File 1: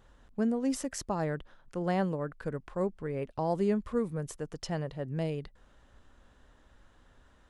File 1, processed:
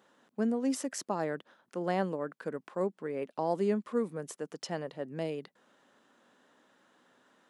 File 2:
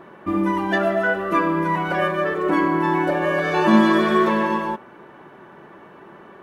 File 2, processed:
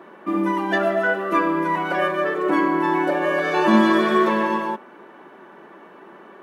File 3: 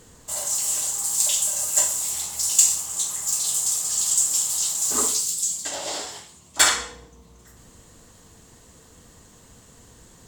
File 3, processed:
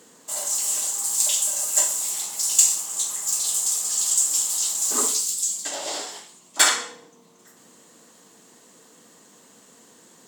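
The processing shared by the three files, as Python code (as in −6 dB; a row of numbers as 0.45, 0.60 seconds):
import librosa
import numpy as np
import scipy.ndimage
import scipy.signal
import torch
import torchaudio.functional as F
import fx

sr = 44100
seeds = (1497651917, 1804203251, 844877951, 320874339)

y = scipy.signal.sosfilt(scipy.signal.butter(4, 200.0, 'highpass', fs=sr, output='sos'), x)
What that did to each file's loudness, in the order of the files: −1.0, −0.5, 0.0 LU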